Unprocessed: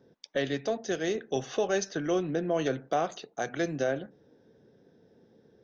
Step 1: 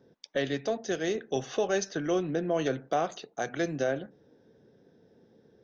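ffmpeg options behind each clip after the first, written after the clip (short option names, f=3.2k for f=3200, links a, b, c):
-af anull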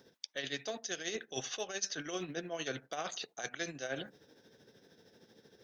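-af "tiltshelf=f=1.3k:g=-9,areverse,acompressor=threshold=-41dB:ratio=6,areverse,tremolo=f=13:d=0.57,volume=7dB"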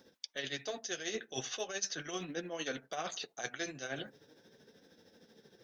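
-af "flanger=delay=3.6:depth=5.1:regen=-42:speed=0.4:shape=sinusoidal,volume=4dB"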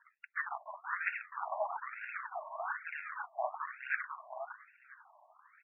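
-af "acrusher=samples=34:mix=1:aa=0.000001:lfo=1:lforange=54.4:lforate=1.7,aecho=1:1:497|994|1491:0.631|0.114|0.0204,afftfilt=real='re*between(b*sr/1024,790*pow(2000/790,0.5+0.5*sin(2*PI*1.1*pts/sr))/1.41,790*pow(2000/790,0.5+0.5*sin(2*PI*1.1*pts/sr))*1.41)':imag='im*between(b*sr/1024,790*pow(2000/790,0.5+0.5*sin(2*PI*1.1*pts/sr))/1.41,790*pow(2000/790,0.5+0.5*sin(2*PI*1.1*pts/sr))*1.41)':win_size=1024:overlap=0.75,volume=9dB"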